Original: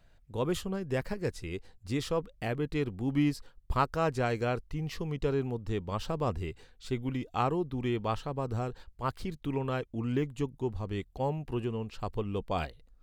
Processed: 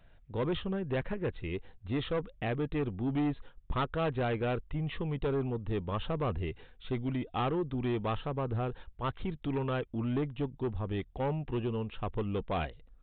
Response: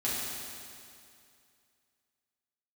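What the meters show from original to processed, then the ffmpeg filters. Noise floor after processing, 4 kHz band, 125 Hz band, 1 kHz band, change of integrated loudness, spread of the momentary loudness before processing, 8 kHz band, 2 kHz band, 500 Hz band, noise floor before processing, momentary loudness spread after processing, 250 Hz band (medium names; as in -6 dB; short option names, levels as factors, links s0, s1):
-59 dBFS, -1.0 dB, 0.0 dB, -2.5 dB, -1.0 dB, 8 LU, under -30 dB, -1.0 dB, -1.0 dB, -61 dBFS, 6 LU, -0.5 dB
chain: -af "aresample=8000,asoftclip=type=tanh:threshold=0.0376,aresample=44100,volume=1.33"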